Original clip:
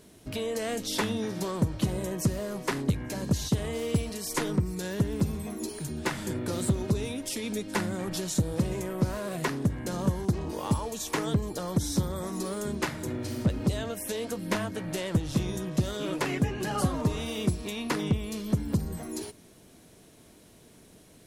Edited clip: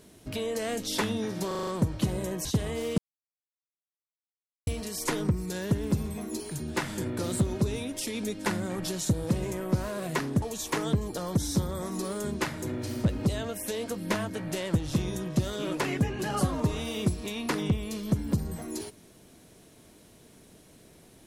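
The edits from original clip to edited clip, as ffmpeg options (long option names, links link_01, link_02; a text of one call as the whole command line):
ffmpeg -i in.wav -filter_complex "[0:a]asplit=9[link_01][link_02][link_03][link_04][link_05][link_06][link_07][link_08][link_09];[link_01]atrim=end=1.512[link_10];[link_02]atrim=start=1.468:end=1.512[link_11];[link_03]atrim=start=1.468:end=1.512[link_12];[link_04]atrim=start=1.468:end=1.512[link_13];[link_05]atrim=start=1.468:end=1.512[link_14];[link_06]atrim=start=1.468:end=2.252[link_15];[link_07]atrim=start=3.428:end=3.96,asetpts=PTS-STARTPTS,afade=type=out:start_time=0.528:duration=0.004:curve=hsin,apad=pad_dur=1.69[link_16];[link_08]atrim=start=3.96:end=9.712,asetpts=PTS-STARTPTS,afade=type=in:duration=0.004:curve=hsin[link_17];[link_09]atrim=start=10.828[link_18];[link_10][link_11]acrossfade=duration=0.004:curve1=hsin:curve2=hsin[link_19];[link_19][link_12]acrossfade=duration=0.004:curve1=hsin:curve2=hsin[link_20];[link_20][link_13]acrossfade=duration=0.004:curve1=hsin:curve2=hsin[link_21];[link_21][link_14]acrossfade=duration=0.004:curve1=hsin:curve2=hsin[link_22];[link_22][link_15]acrossfade=duration=0.004:curve1=hsin:curve2=hsin[link_23];[link_16][link_17]concat=n=2:v=0:a=1[link_24];[link_23][link_24]acrossfade=duration=0.004:curve1=hsin:curve2=hsin[link_25];[link_25][link_18]acrossfade=duration=0.004:curve1=hsin:curve2=hsin" out.wav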